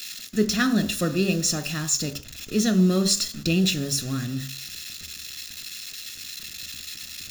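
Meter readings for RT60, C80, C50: 0.45 s, 21.0 dB, 16.5 dB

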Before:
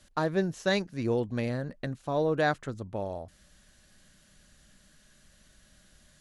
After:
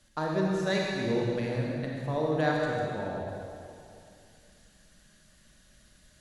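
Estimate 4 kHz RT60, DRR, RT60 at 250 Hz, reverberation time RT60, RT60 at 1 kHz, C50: 2.3 s, −2.5 dB, 2.7 s, 2.5 s, 2.5 s, −1.5 dB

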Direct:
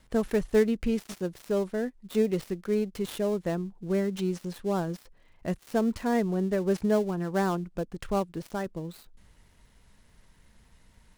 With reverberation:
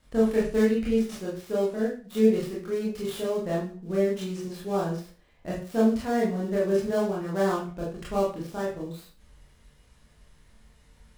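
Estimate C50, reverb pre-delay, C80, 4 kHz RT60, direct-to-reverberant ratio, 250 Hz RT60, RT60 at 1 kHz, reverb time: 5.0 dB, 22 ms, 10.0 dB, 0.40 s, −6.0 dB, 0.40 s, 0.40 s, 0.40 s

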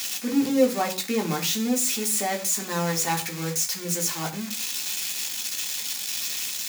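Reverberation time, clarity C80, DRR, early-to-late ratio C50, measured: non-exponential decay, 17.5 dB, 0.0 dB, 13.0 dB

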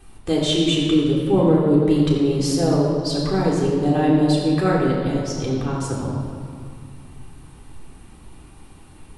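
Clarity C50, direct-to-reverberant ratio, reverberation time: 1.0 dB, −5.5 dB, 2.2 s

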